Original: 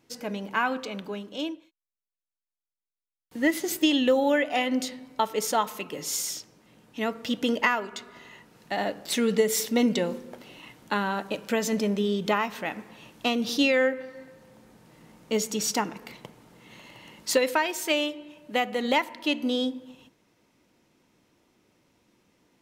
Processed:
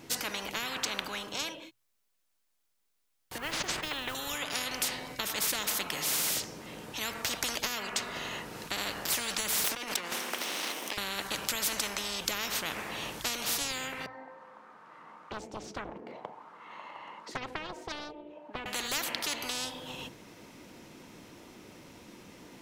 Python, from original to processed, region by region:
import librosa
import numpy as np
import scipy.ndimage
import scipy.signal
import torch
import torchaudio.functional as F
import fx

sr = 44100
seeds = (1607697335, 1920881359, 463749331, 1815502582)

y = fx.chain(x, sr, fx.cheby1_lowpass(hz=1500.0, order=2),
    fx.quant_float(bits=6),
    fx.sustainer(db_per_s=44.0), at=(3.38, 4.15))
y = fx.chain(y, sr, fx.lower_of_two(delay_ms=0.34),
    fx.highpass(hz=330.0, slope=24),
    fx.over_compress(threshold_db=-38.0, ratio=-1.0), at=(9.64, 10.98))
y = fx.chain(y, sr, fx.auto_wah(base_hz=350.0, top_hz=1400.0, q=3.5, full_db=-32.0, direction='down'),
    fx.doppler_dist(depth_ms=0.93), at=(14.06, 18.66))
y = fx.hum_notches(y, sr, base_hz=60, count=2)
y = fx.spectral_comp(y, sr, ratio=10.0)